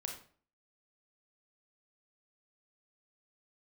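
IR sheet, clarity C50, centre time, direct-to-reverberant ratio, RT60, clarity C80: 6.0 dB, 25 ms, 1.5 dB, 0.45 s, 10.5 dB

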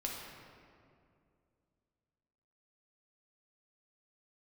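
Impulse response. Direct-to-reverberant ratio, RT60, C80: −2.0 dB, 2.4 s, 2.5 dB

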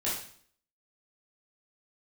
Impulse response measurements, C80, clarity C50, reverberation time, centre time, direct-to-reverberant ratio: 8.0 dB, 3.0 dB, 0.55 s, 45 ms, −8.5 dB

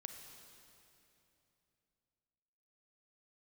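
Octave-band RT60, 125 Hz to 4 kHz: 3.6, 3.4, 3.1, 2.8, 2.7, 2.6 seconds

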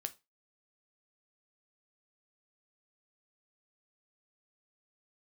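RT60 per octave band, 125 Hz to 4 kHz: 0.25, 0.20, 0.25, 0.25, 0.20, 0.25 seconds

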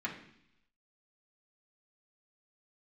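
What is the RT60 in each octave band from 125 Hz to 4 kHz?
0.90, 0.85, 0.70, 0.70, 0.85, 0.95 seconds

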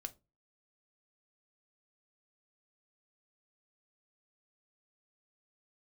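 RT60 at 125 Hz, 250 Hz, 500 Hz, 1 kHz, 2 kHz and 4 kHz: 0.40, 0.35, 0.30, 0.20, 0.20, 0.20 seconds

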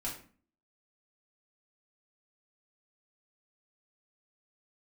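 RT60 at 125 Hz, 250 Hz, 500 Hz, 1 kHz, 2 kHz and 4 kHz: 0.50, 0.65, 0.45, 0.40, 0.40, 0.30 seconds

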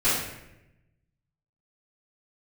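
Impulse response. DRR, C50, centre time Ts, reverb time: −14.0 dB, 0.5 dB, 64 ms, 0.90 s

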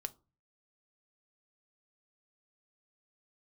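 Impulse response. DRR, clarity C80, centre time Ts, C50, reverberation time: 9.5 dB, 29.0 dB, 2 ms, 22.5 dB, 0.35 s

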